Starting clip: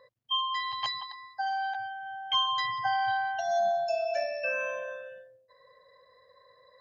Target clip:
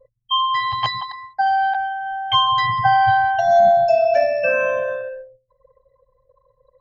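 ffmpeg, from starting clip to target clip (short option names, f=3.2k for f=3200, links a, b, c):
-af "anlmdn=0.0251,aemphasis=mode=reproduction:type=riaa,acontrast=75,volume=6dB"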